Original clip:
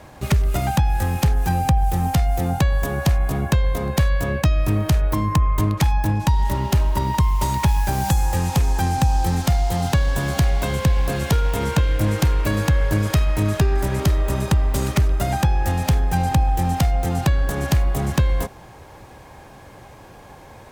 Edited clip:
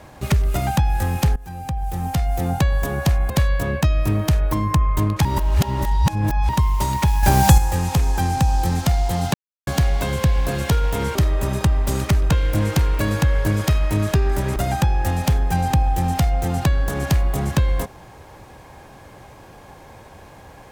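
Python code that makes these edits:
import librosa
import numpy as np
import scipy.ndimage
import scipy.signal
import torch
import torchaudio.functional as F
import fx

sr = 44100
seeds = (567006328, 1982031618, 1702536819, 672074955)

y = fx.edit(x, sr, fx.fade_in_from(start_s=1.36, length_s=1.14, floor_db=-21.0),
    fx.cut(start_s=3.3, length_s=0.61),
    fx.reverse_span(start_s=5.86, length_s=1.24),
    fx.clip_gain(start_s=7.84, length_s=0.35, db=7.0),
    fx.silence(start_s=9.95, length_s=0.33),
    fx.move(start_s=14.02, length_s=1.15, to_s=11.76), tone=tone)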